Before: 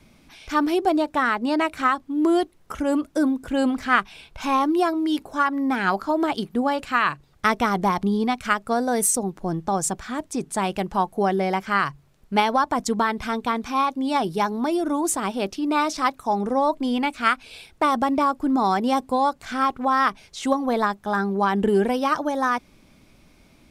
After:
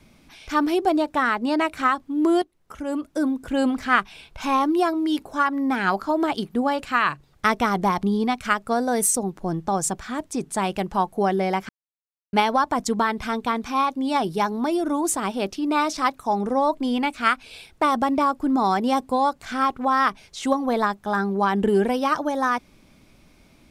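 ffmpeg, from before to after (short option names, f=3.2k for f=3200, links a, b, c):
-filter_complex "[0:a]asplit=4[a][b][c][d];[a]atrim=end=2.42,asetpts=PTS-STARTPTS,afade=t=out:st=2.416:d=0.004:c=hsin:silence=0.199526[e];[b]atrim=start=2.42:end=11.69,asetpts=PTS-STARTPTS,afade=t=in:d=1.11:silence=0.199526,afade=t=out:st=9.266:d=0.004:c=hsin[f];[c]atrim=start=11.69:end=12.33,asetpts=PTS-STARTPTS,volume=0[g];[d]atrim=start=12.33,asetpts=PTS-STARTPTS,afade=t=in:d=0.004:c=hsin[h];[e][f][g][h]concat=n=4:v=0:a=1"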